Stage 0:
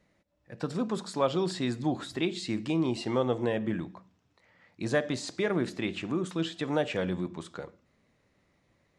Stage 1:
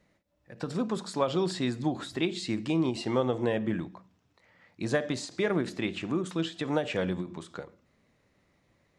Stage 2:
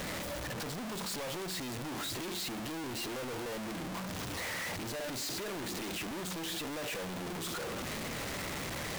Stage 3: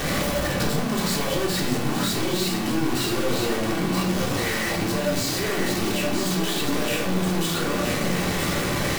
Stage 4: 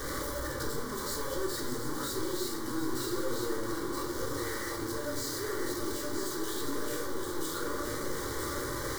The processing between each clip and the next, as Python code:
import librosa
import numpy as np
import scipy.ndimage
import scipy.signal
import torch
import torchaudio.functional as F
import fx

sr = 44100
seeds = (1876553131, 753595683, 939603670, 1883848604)

y1 = fx.end_taper(x, sr, db_per_s=180.0)
y1 = y1 * librosa.db_to_amplitude(1.0)
y2 = np.sign(y1) * np.sqrt(np.mean(np.square(y1)))
y2 = fx.low_shelf(y2, sr, hz=280.0, db=-6.0)
y2 = fx.leveller(y2, sr, passes=1)
y2 = y2 * librosa.db_to_amplitude(-6.5)
y3 = y2 + 10.0 ** (-5.0 / 20.0) * np.pad(y2, (int(973 * sr / 1000.0), 0))[:len(y2)]
y3 = fx.room_shoebox(y3, sr, seeds[0], volume_m3=740.0, walls='furnished', distance_m=3.5)
y3 = fx.rider(y3, sr, range_db=10, speed_s=0.5)
y3 = y3 * librosa.db_to_amplitude(7.0)
y4 = fx.fixed_phaser(y3, sr, hz=700.0, stages=6)
y4 = y4 + 10.0 ** (-10.0 / 20.0) * np.pad(y4, (int(729 * sr / 1000.0), 0))[:len(y4)]
y4 = y4 * librosa.db_to_amplitude(-7.5)